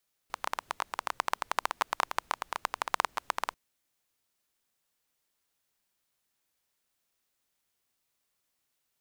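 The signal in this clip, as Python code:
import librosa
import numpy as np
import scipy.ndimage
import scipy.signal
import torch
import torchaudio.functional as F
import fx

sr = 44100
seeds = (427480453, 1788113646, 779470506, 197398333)

y = fx.rain(sr, seeds[0], length_s=3.24, drops_per_s=14.0, hz=1000.0, bed_db=-28.5)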